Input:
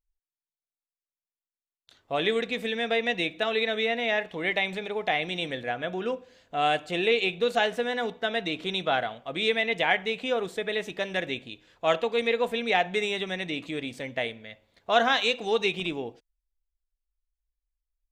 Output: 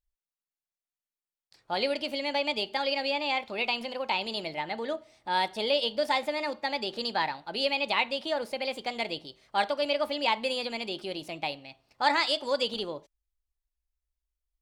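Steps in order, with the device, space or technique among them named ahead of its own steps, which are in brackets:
nightcore (speed change +24%)
level −2.5 dB

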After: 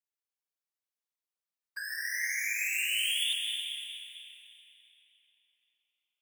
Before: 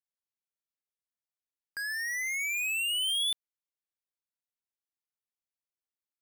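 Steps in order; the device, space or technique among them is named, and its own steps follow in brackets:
whispering ghost (random phases in short frames; high-pass filter 400 Hz 12 dB per octave; convolution reverb RT60 3.9 s, pre-delay 116 ms, DRR −1 dB)
0:01.83–0:03.24: high-shelf EQ 10,000 Hz +6 dB
level −4 dB

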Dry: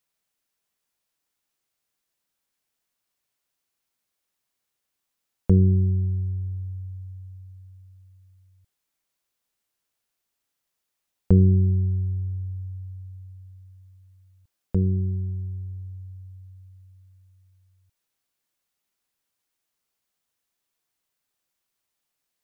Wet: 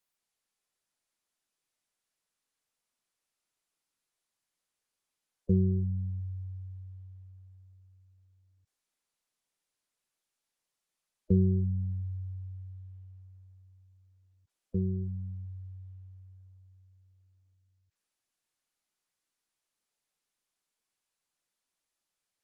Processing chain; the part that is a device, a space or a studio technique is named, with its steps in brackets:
noise-suppressed video call (high-pass filter 160 Hz 6 dB per octave; gate on every frequency bin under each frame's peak −15 dB strong; level −4 dB; Opus 24 kbit/s 48,000 Hz)

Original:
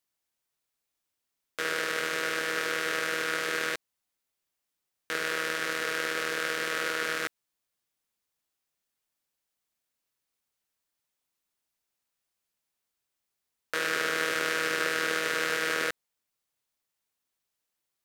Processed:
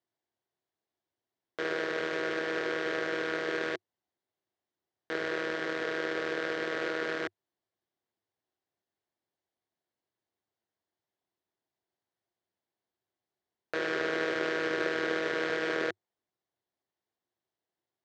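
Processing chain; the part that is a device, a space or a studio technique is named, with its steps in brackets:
Bessel low-pass filter 2,500 Hz, order 2
car door speaker with a rattle (loose part that buzzes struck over −46 dBFS, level −27 dBFS; loudspeaker in its box 87–7,900 Hz, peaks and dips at 99 Hz +7 dB, 360 Hz +9 dB, 700 Hz +5 dB, 1,300 Hz −6 dB, 2,500 Hz −9 dB)

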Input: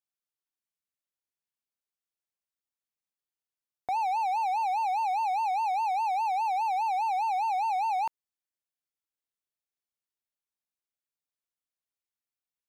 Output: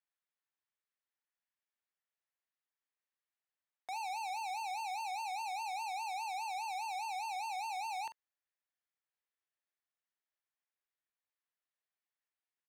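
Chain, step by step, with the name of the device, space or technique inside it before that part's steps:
megaphone (band-pass filter 530–3,000 Hz; parametric band 1,800 Hz +5.5 dB 0.33 octaves; hard clipping −39.5 dBFS, distortion −10 dB; double-tracking delay 43 ms −11 dB)

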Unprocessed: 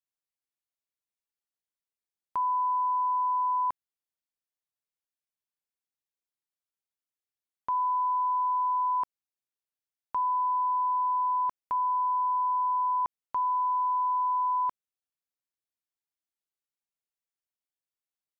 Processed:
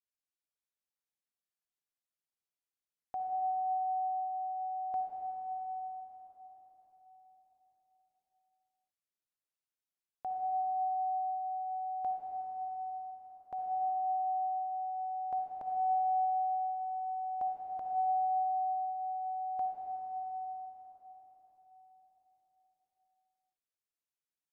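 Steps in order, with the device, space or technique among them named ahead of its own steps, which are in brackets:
slowed and reverbed (speed change −25%; convolution reverb RT60 4.9 s, pre-delay 50 ms, DRR −1 dB)
level −9 dB

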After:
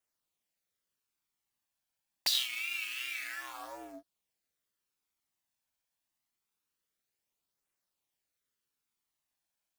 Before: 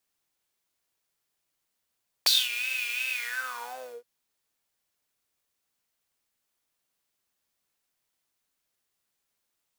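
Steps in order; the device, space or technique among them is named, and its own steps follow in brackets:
alien voice (ring modulation 190 Hz; flanger 0.26 Hz, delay 0.1 ms, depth 1.2 ms, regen −41%)

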